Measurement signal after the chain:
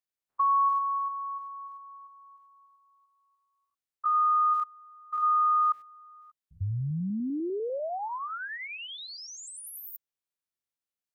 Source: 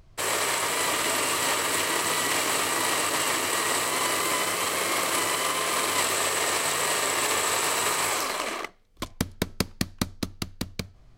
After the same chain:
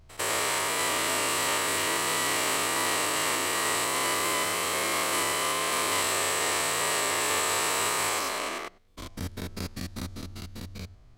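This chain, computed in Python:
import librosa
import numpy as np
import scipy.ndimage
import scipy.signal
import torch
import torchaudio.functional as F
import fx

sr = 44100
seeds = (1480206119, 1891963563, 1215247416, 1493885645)

y = fx.spec_steps(x, sr, hold_ms=100)
y = fx.peak_eq(y, sr, hz=82.0, db=5.0, octaves=0.31)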